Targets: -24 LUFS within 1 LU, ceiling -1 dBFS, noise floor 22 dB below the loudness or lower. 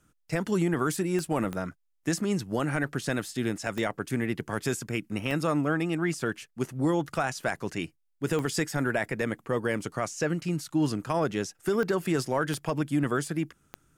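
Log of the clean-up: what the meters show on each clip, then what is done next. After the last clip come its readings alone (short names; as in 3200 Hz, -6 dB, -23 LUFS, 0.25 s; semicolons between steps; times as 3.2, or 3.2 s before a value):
clicks 8; loudness -29.5 LUFS; peak -15.5 dBFS; loudness target -24.0 LUFS
-> de-click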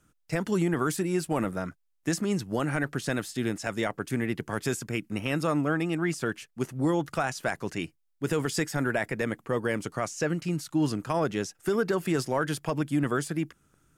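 clicks 0; loudness -29.5 LUFS; peak -15.5 dBFS; loudness target -24.0 LUFS
-> gain +5.5 dB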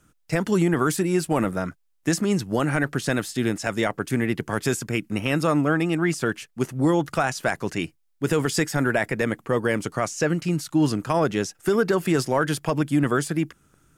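loudness -24.0 LUFS; peak -10.0 dBFS; noise floor -67 dBFS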